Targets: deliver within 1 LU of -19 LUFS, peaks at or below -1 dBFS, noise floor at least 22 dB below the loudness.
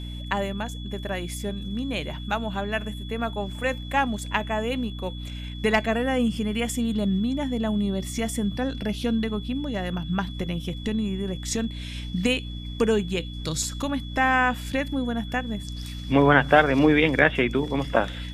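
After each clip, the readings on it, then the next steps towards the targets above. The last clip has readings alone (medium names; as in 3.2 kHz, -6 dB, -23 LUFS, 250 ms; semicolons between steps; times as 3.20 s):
hum 60 Hz; highest harmonic 300 Hz; hum level -32 dBFS; steady tone 3.4 kHz; tone level -42 dBFS; loudness -25.5 LUFS; peak level -3.0 dBFS; loudness target -19.0 LUFS
-> de-hum 60 Hz, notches 5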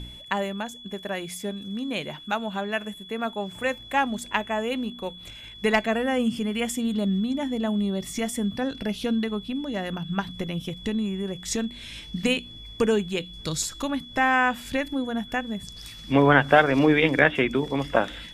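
hum not found; steady tone 3.4 kHz; tone level -42 dBFS
-> band-stop 3.4 kHz, Q 30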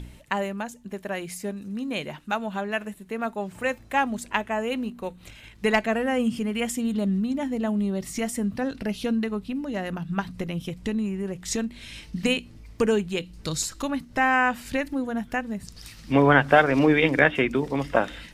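steady tone not found; loudness -25.5 LUFS; peak level -3.0 dBFS; loudness target -19.0 LUFS
-> trim +6.5 dB; peak limiter -1 dBFS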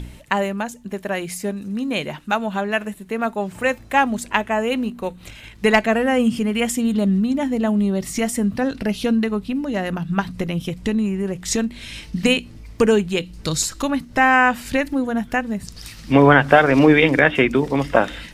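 loudness -19.5 LUFS; peak level -1.0 dBFS; noise floor -42 dBFS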